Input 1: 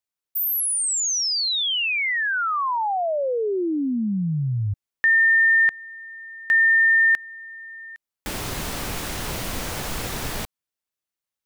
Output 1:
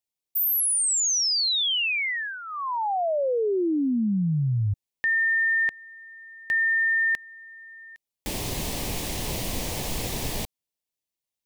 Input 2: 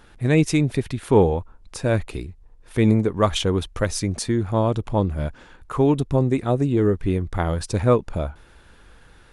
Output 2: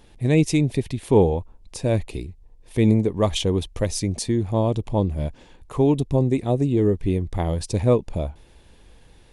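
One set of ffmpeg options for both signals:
ffmpeg -i in.wav -af "equalizer=frequency=1400:width=2.4:gain=-15" out.wav

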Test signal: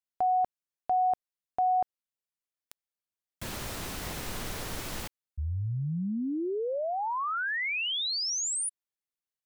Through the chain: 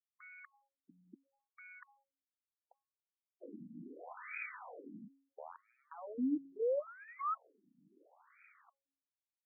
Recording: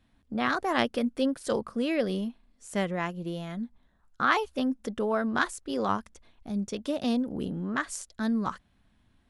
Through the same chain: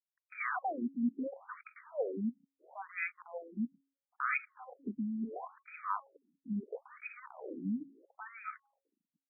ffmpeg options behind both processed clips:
ffmpeg -i in.wav -filter_complex "[0:a]aecho=1:1:4:0.36,acrossover=split=300|2400[link_01][link_02][link_03];[link_03]dynaudnorm=framelen=170:gausssize=3:maxgain=16.5dB[link_04];[link_01][link_02][link_04]amix=inputs=3:normalize=0,acrusher=bits=6:dc=4:mix=0:aa=0.000001,areverse,acompressor=threshold=-26dB:ratio=5:attack=18:release=29:knee=6:detection=peak,areverse,highshelf=frequency=2600:width_type=q:width=3:gain=13.5,bandreject=frequency=2100:width=28,bandreject=frequency=274.2:width_type=h:width=4,bandreject=frequency=548.4:width_type=h:width=4,bandreject=frequency=822.6:width_type=h:width=4,bandreject=frequency=1096.8:width_type=h:width=4,afftfilt=real='re*between(b*sr/1024,210*pow(1800/210,0.5+0.5*sin(2*PI*0.74*pts/sr))/1.41,210*pow(1800/210,0.5+0.5*sin(2*PI*0.74*pts/sr))*1.41)':imag='im*between(b*sr/1024,210*pow(1800/210,0.5+0.5*sin(2*PI*0.74*pts/sr))/1.41,210*pow(1800/210,0.5+0.5*sin(2*PI*0.74*pts/sr))*1.41)':win_size=1024:overlap=0.75,volume=-2.5dB" out.wav

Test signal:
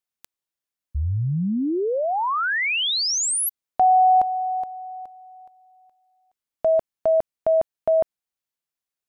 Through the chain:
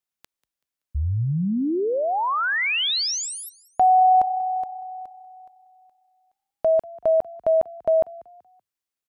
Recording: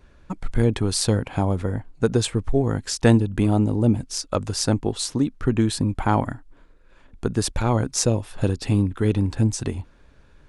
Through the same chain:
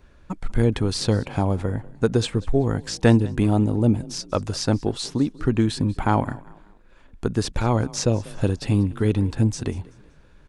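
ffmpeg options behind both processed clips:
ffmpeg -i in.wav -filter_complex "[0:a]acrossover=split=6200[link_01][link_02];[link_02]acompressor=threshold=-41dB:ratio=4:attack=1:release=60[link_03];[link_01][link_03]amix=inputs=2:normalize=0,asplit=4[link_04][link_05][link_06][link_07];[link_05]adelay=190,afreqshift=31,volume=-21.5dB[link_08];[link_06]adelay=380,afreqshift=62,volume=-30.4dB[link_09];[link_07]adelay=570,afreqshift=93,volume=-39.2dB[link_10];[link_04][link_08][link_09][link_10]amix=inputs=4:normalize=0" out.wav

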